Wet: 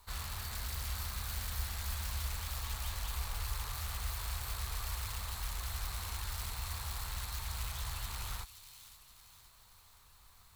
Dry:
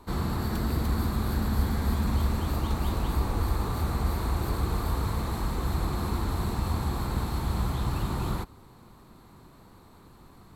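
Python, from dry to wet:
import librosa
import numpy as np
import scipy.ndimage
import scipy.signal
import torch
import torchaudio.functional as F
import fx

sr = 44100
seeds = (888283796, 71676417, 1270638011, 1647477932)

p1 = (np.mod(10.0 ** (24.5 / 20.0) * x + 1.0, 2.0) - 1.0) / 10.0 ** (24.5 / 20.0)
p2 = x + (p1 * librosa.db_to_amplitude(-7.0))
p3 = fx.peak_eq(p2, sr, hz=160.0, db=-14.0, octaves=0.25)
p4 = fx.quant_dither(p3, sr, seeds[0], bits=10, dither='none')
p5 = fx.tone_stack(p4, sr, knobs='10-0-10')
p6 = p5 + fx.echo_wet_highpass(p5, sr, ms=526, feedback_pct=50, hz=2900.0, wet_db=-10, dry=0)
y = p6 * librosa.db_to_amplitude(-4.0)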